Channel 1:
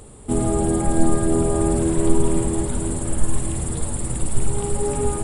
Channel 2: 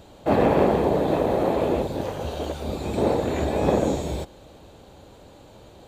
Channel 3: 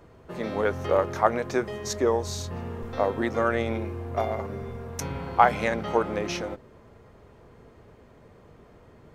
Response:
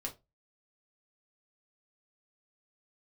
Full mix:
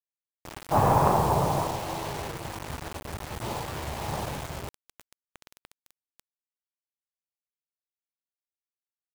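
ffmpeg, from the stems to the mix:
-filter_complex "[0:a]highpass=f=41:w=0.5412,highpass=f=41:w=1.3066,alimiter=limit=0.168:level=0:latency=1:release=231,asoftclip=type=hard:threshold=0.0708,volume=0.422[s0];[1:a]bandreject=f=60:t=h:w=6,bandreject=f=120:t=h:w=6,bandreject=f=180:t=h:w=6,bandreject=f=240:t=h:w=6,bandreject=f=300:t=h:w=6,bandreject=f=360:t=h:w=6,aeval=exprs='0.562*(cos(1*acos(clip(val(0)/0.562,-1,1)))-cos(1*PI/2))+0.2*(cos(2*acos(clip(val(0)/0.562,-1,1)))-cos(2*PI/2))+0.00398*(cos(3*acos(clip(val(0)/0.562,-1,1)))-cos(3*PI/2))+0.0562*(cos(4*acos(clip(val(0)/0.562,-1,1)))-cos(4*PI/2))+0.0112*(cos(8*acos(clip(val(0)/0.562,-1,1)))-cos(8*PI/2))':c=same,equalizer=f=125:t=o:w=1:g=10,equalizer=f=250:t=o:w=1:g=-10,equalizer=f=500:t=o:w=1:g=-8,equalizer=f=1000:t=o:w=1:g=11,equalizer=f=2000:t=o:w=1:g=-7,equalizer=f=8000:t=o:w=1:g=7,adelay=450,volume=0.891,afade=t=out:st=1.48:d=0.32:silence=0.334965[s1];[2:a]equalizer=f=1600:t=o:w=0.29:g=-12,adelay=250,volume=0.376[s2];[s0][s2]amix=inputs=2:normalize=0,alimiter=level_in=4.47:limit=0.0631:level=0:latency=1:release=32,volume=0.224,volume=1[s3];[s1][s3]amix=inputs=2:normalize=0,acrossover=split=2700[s4][s5];[s5]acompressor=threshold=0.00112:ratio=4:attack=1:release=60[s6];[s4][s6]amix=inputs=2:normalize=0,acrusher=bits=5:mix=0:aa=0.000001"

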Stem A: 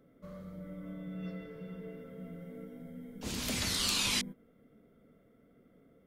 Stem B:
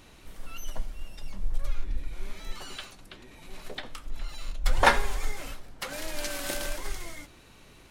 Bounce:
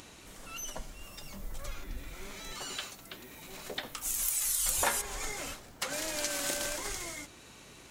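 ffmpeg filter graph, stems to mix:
-filter_complex "[0:a]highpass=f=810:w=0.5412,highpass=f=810:w=1.3066,aphaser=in_gain=1:out_gain=1:delay=3.9:decay=0.47:speed=0.36:type=triangular,aexciter=amount=6.3:drive=7.8:freq=6500,adelay=800,volume=0.75[s0];[1:a]equalizer=f=7100:t=o:w=0.77:g=7,acompressor=mode=upward:threshold=0.00398:ratio=2.5,volume=1.12[s1];[s0][s1]amix=inputs=2:normalize=0,highpass=f=110:p=1,acompressor=threshold=0.0316:ratio=3"

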